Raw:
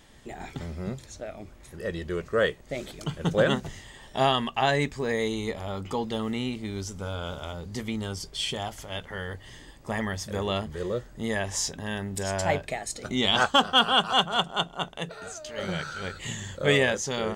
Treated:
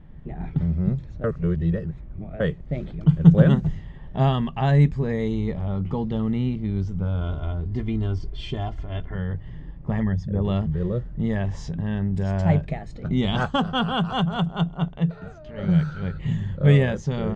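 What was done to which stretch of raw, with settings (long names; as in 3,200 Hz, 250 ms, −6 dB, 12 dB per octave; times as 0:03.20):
0:01.24–0:02.40: reverse
0:07.21–0:09.15: comb filter 2.9 ms, depth 69%
0:10.03–0:10.45: spectral envelope exaggerated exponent 1.5
whole clip: parametric band 160 Hz +12.5 dB 0.47 octaves; low-pass that shuts in the quiet parts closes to 2,200 Hz, open at −18 dBFS; RIAA equalisation playback; level −3.5 dB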